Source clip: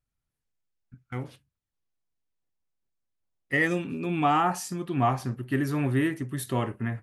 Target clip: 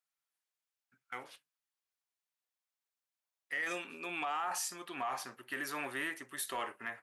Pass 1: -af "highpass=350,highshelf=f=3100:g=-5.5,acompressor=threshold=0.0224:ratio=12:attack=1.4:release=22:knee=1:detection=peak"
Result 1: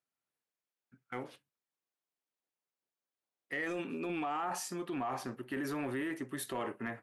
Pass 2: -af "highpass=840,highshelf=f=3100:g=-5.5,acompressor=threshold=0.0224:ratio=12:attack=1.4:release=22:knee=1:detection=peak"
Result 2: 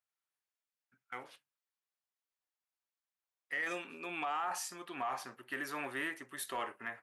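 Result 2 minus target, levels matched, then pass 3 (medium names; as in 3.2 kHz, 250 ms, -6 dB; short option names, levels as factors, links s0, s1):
8 kHz band -3.0 dB
-af "highpass=840,acompressor=threshold=0.0224:ratio=12:attack=1.4:release=22:knee=1:detection=peak"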